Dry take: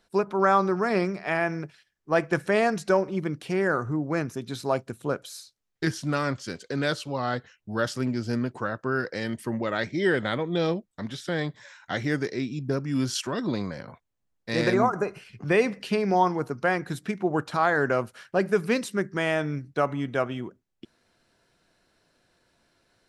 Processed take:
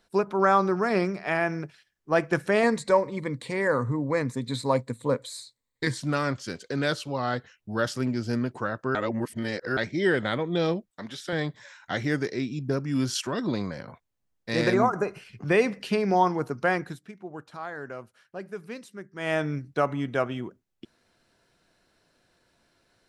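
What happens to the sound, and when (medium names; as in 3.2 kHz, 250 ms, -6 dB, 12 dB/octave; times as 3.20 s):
2.63–6.00 s: rippled EQ curve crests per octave 1, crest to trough 12 dB
8.95–9.77 s: reverse
10.90–11.33 s: high-pass 340 Hz 6 dB/octave
16.81–19.34 s: dip -14 dB, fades 0.18 s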